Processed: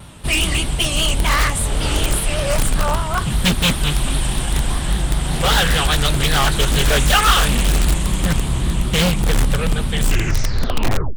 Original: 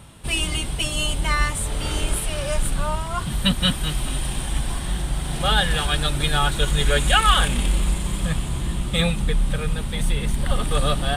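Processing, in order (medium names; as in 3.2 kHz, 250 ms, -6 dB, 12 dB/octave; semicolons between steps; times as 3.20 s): tape stop on the ending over 1.23 s; in parallel at -4 dB: integer overflow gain 14.5 dB; on the sum: vibrato 5.1 Hz 91 cents; loudspeaker Doppler distortion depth 0.38 ms; trim +2 dB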